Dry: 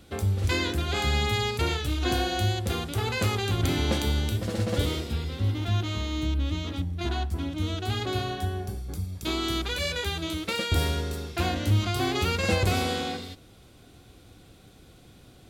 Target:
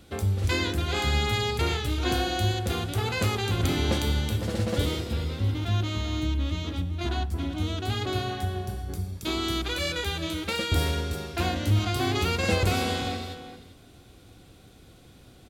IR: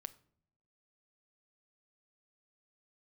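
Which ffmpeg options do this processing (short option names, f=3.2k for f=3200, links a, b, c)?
-filter_complex "[0:a]asplit=2[a][b];[b]adelay=390.7,volume=-11dB,highshelf=f=4k:g=-8.79[c];[a][c]amix=inputs=2:normalize=0"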